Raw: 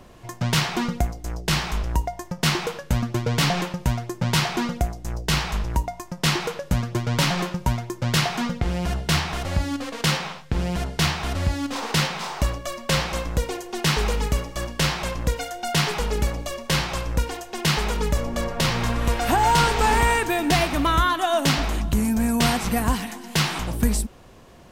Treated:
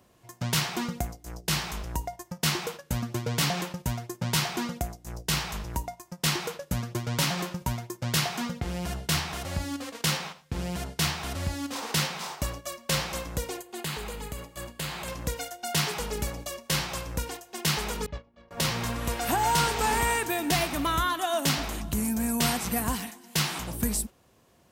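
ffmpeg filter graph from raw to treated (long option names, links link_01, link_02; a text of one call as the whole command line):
ffmpeg -i in.wav -filter_complex "[0:a]asettb=1/sr,asplit=3[link_01][link_02][link_03];[link_01]atrim=end=13.584[link_04];[link_02]atrim=start=13.58:end=15.08,asetpts=PTS-STARTPTS,afade=type=in:duration=0.004:curve=qsin,afade=type=out:start_time=1.496:duration=0.004:curve=qsin,equalizer=frequency=5600:width_type=o:width=0.25:gain=-11,acompressor=threshold=-26dB:ratio=2.5:attack=3.2:release=140:knee=1:detection=peak[link_05];[link_03]atrim=start=15.076[link_06];[link_04][link_05]acrossfade=duration=0.004:curve1=hsin:curve2=qsin[link_07];[link_07][link_06]acrossfade=duration=0.004:curve1=qsin:curve2=hsin,asettb=1/sr,asplit=3[link_08][link_09][link_10];[link_08]atrim=end=18.064[link_11];[link_09]atrim=start=18.06:end=18.51,asetpts=PTS-STARTPTS,afade=type=in:duration=0.004:curve=qsin,afade=type=out:start_time=0.446:duration=0.004:curve=qsin,agate=range=-33dB:threshold=-15dB:ratio=3:release=100:detection=peak,lowpass=frequency=4000:width=0.5412,lowpass=frequency=4000:width=1.3066[link_12];[link_10]atrim=start=18.506[link_13];[link_11][link_12]acrossfade=duration=0.004:curve1=hsin:curve2=qsin[link_14];[link_14][link_13]acrossfade=duration=0.004:curve1=qsin:curve2=hsin,highpass=64,agate=range=-7dB:threshold=-32dB:ratio=16:detection=peak,highshelf=frequency=7200:gain=11,volume=-6.5dB" out.wav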